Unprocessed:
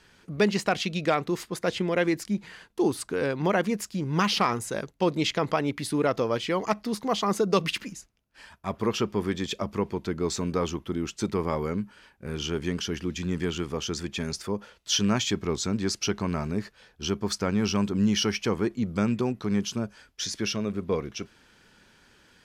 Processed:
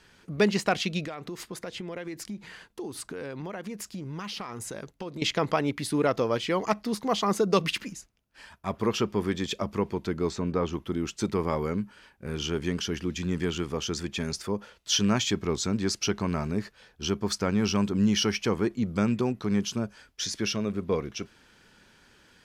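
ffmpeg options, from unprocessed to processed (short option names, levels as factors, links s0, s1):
-filter_complex "[0:a]asettb=1/sr,asplit=3[s0][s1][s2];[s0]atrim=end=1.034[s3];[s1]atrim=start=1.03:end=5.22,asetpts=PTS-STARTPTS,afade=t=in:d=0.004:c=qsin,afade=t=out:st=4.186:d=0.004:c=qsin,acompressor=threshold=0.0224:ratio=8:attack=3.2:release=140:knee=1:detection=peak[s4];[s2]atrim=start=5.216[s5];[s3][s4]acrossfade=d=0.004:c1=hsin:c2=qsin[s6];[s6][s5]acrossfade=d=0.004:c1=qsin:c2=hsin,asplit=3[s7][s8][s9];[s7]afade=t=out:st=10.29:d=0.02[s10];[s8]lowpass=f=2100:p=1,afade=t=in:st=10.29:d=0.02,afade=t=out:st=10.72:d=0.02[s11];[s9]afade=t=in:st=10.72:d=0.02[s12];[s10][s11][s12]amix=inputs=3:normalize=0"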